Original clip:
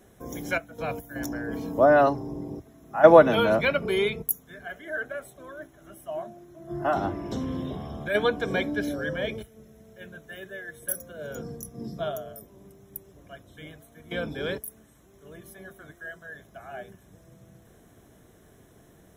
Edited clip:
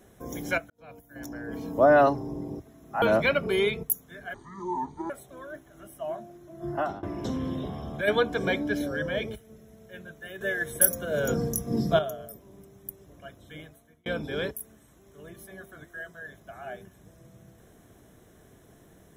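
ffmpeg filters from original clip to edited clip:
-filter_complex "[0:a]asplit=9[a][b][c][d][e][f][g][h][i];[a]atrim=end=0.7,asetpts=PTS-STARTPTS,afade=t=out:st=0.696:d=0.004:c=hsin[j];[b]atrim=start=0.7:end=3.022,asetpts=PTS-STARTPTS,afade=t=in:d=1.26[k];[c]atrim=start=3.408:end=4.734[l];[d]atrim=start=4.73:end=5.17,asetpts=PTS-STARTPTS,asetrate=25578,aresample=44100,atrim=end_sample=33455,asetpts=PTS-STARTPTS[m];[e]atrim=start=5.166:end=7.1,asetpts=PTS-STARTPTS,afade=t=out:st=1.604:d=0.33:silence=0.0794328[n];[f]atrim=start=7.1:end=10.482,asetpts=PTS-STARTPTS,afade=t=in:d=0.004:c=hsin:silence=0.0794328[o];[g]atrim=start=10.478:end=12.062,asetpts=PTS-STARTPTS,volume=10dB[p];[h]atrim=start=12.058:end=14.13,asetpts=PTS-STARTPTS,afade=t=out:st=1.622:d=0.45[q];[i]atrim=start=14.13,asetpts=PTS-STARTPTS,afade=t=in:d=0.004:c=hsin[r];[j][k]concat=n=2:v=0:a=1[s];[s][l]acrossfade=d=0.004:c1=hsin:c2=hsin[t];[t][m]acrossfade=d=0.004:c1=hsin:c2=hsin[u];[n][o]concat=n=2:v=0:a=1[v];[u][v]acrossfade=d=0.004:c1=hsin:c2=hsin[w];[w][p]acrossfade=d=0.004:c1=hsin:c2=hsin[x];[q][r]concat=n=2:v=0:a=1[y];[x][y]acrossfade=d=0.004:c1=hsin:c2=hsin"

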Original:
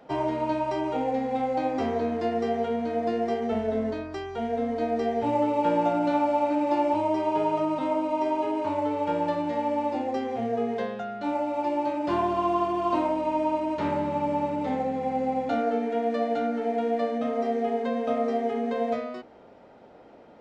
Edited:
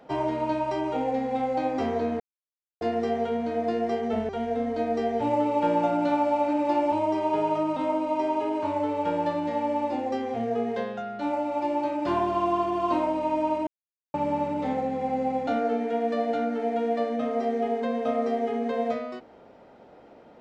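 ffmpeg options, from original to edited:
-filter_complex "[0:a]asplit=5[a][b][c][d][e];[a]atrim=end=2.2,asetpts=PTS-STARTPTS,afade=t=out:st=2.196:d=0.004:c=hsin,apad=pad_dur=0.61[f];[b]atrim=start=2.2:end=3.682,asetpts=PTS-STARTPTS,afade=t=in:d=0.004:c=hsin[g];[c]atrim=start=4.308:end=13.69,asetpts=PTS-STARTPTS,afade=t=out:st=9.378:d=0.004:c=hsin[h];[d]atrim=start=13.69:end=14.16,asetpts=PTS-STARTPTS,volume=0[i];[e]atrim=start=14.16,asetpts=PTS-STARTPTS,afade=t=in:d=0.004:c=hsin[j];[f][g]concat=n=2:v=0:a=1[k];[h][i][j]concat=n=3:v=0:a=1[l];[k][l]acrossfade=d=0.004:c1=hsin:c2=hsin"

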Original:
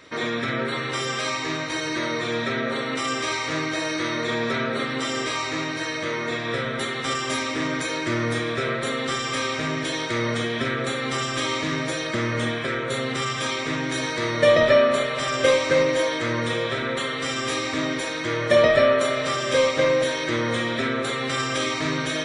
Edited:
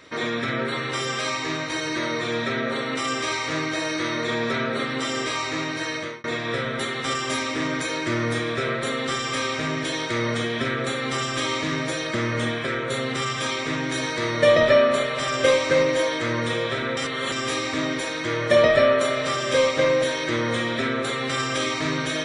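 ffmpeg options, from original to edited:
-filter_complex "[0:a]asplit=4[a][b][c][d];[a]atrim=end=6.24,asetpts=PTS-STARTPTS,afade=t=out:st=5.96:d=0.28[e];[b]atrim=start=6.24:end=16.972,asetpts=PTS-STARTPTS,afade=t=in:d=0.004:c=hsin[f];[c]atrim=start=16.968:end=17.322,asetpts=PTS-STARTPTS,areverse[g];[d]atrim=start=17.318[h];[e][f]concat=n=2:v=0:a=1[i];[i][g]acrossfade=d=0.004:c1=hsin:c2=hsin[j];[j][h]acrossfade=d=0.004:c1=hsin:c2=hsin"

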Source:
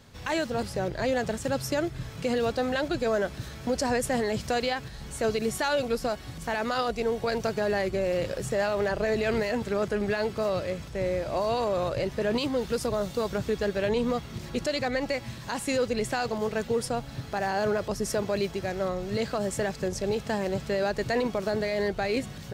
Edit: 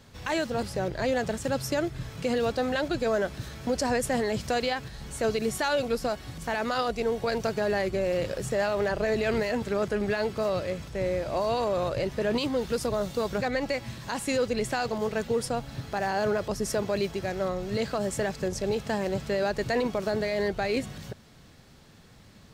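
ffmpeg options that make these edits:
-filter_complex "[0:a]asplit=2[a][b];[a]atrim=end=13.412[c];[b]atrim=start=14.808[d];[c][d]acrossfade=d=0.004:c1=hsin:c2=hsin"

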